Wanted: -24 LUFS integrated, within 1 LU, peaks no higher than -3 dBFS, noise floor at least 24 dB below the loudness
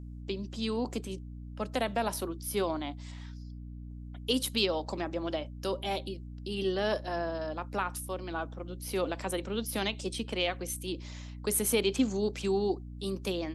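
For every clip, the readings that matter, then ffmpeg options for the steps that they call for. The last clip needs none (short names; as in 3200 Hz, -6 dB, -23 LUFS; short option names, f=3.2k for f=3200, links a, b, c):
hum 60 Hz; harmonics up to 300 Hz; hum level -41 dBFS; loudness -33.0 LUFS; peak -13.0 dBFS; loudness target -24.0 LUFS
-> -af "bandreject=f=60:t=h:w=6,bandreject=f=120:t=h:w=6,bandreject=f=180:t=h:w=6,bandreject=f=240:t=h:w=6,bandreject=f=300:t=h:w=6"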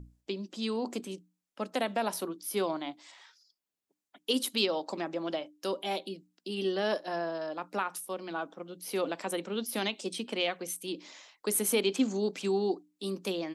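hum none; loudness -33.0 LUFS; peak -13.5 dBFS; loudness target -24.0 LUFS
-> -af "volume=9dB"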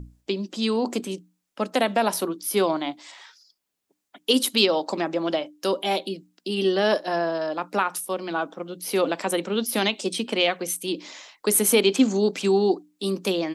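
loudness -24.0 LUFS; peak -4.5 dBFS; noise floor -77 dBFS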